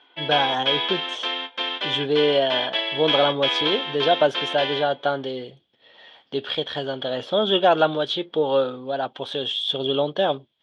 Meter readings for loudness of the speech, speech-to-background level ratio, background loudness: -23.5 LUFS, 1.0 dB, -24.5 LUFS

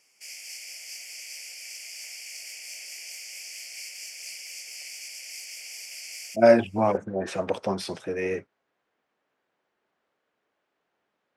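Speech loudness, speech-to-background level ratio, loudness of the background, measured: -24.5 LUFS, 13.5 dB, -38.0 LUFS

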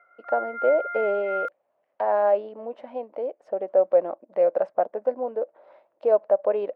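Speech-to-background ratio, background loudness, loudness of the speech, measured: 7.0 dB, -32.0 LUFS, -25.0 LUFS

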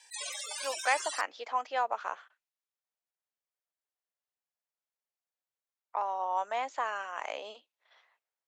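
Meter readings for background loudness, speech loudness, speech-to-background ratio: -37.5 LUFS, -34.0 LUFS, 3.5 dB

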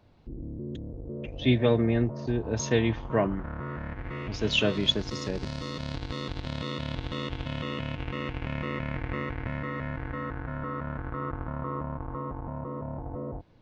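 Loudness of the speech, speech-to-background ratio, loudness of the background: -27.0 LUFS, 9.0 dB, -36.0 LUFS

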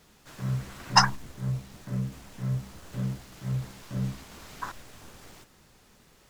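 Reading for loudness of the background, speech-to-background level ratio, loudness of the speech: -34.5 LUFS, 9.0 dB, -25.5 LUFS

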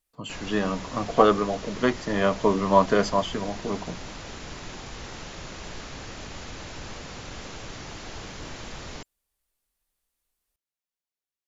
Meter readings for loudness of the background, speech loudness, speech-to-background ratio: -39.0 LUFS, -24.5 LUFS, 14.5 dB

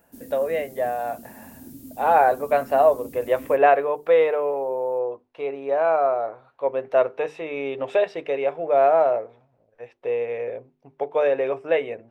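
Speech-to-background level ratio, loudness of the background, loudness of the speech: 20.0 dB, -42.5 LUFS, -22.5 LUFS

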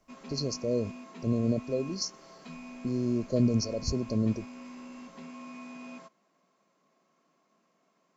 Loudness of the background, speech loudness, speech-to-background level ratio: -45.5 LUFS, -31.0 LUFS, 14.5 dB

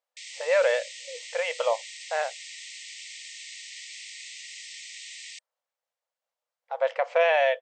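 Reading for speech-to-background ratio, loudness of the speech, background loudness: 13.0 dB, -26.5 LUFS, -39.5 LUFS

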